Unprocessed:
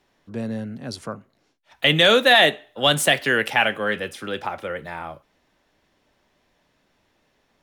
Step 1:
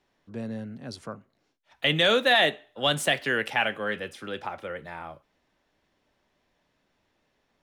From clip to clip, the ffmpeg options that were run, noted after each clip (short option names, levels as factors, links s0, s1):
-af "highshelf=f=11000:g=-8,volume=0.501"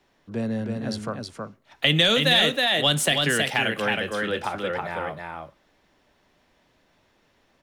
-filter_complex "[0:a]aecho=1:1:319:0.631,acrossover=split=250|3000[s0][s1][s2];[s1]acompressor=threshold=0.0316:ratio=6[s3];[s0][s3][s2]amix=inputs=3:normalize=0,volume=2.24"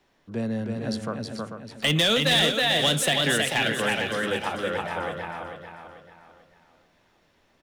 -af "asoftclip=type=hard:threshold=0.178,aecho=1:1:442|884|1326|1768:0.398|0.147|0.0545|0.0202,volume=0.891"